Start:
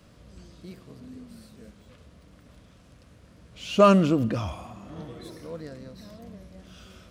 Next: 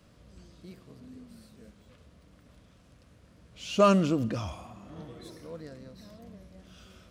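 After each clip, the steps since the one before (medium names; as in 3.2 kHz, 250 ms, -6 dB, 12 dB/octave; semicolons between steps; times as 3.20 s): dynamic bell 6.2 kHz, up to +5 dB, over -54 dBFS, Q 1; trim -4.5 dB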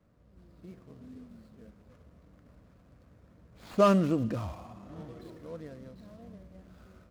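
median filter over 15 samples; level rider gain up to 7.5 dB; trim -7.5 dB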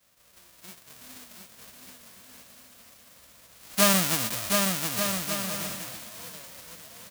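formants flattened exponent 0.1; on a send: bouncing-ball echo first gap 720 ms, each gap 0.65×, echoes 5; on the sum: trim +1 dB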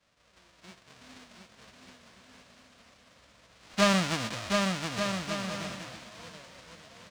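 distance through air 120 m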